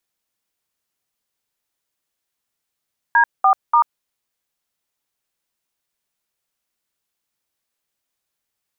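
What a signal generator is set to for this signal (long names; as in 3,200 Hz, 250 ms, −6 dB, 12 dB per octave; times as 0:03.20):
touch tones "D4*", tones 89 ms, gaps 203 ms, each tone −12.5 dBFS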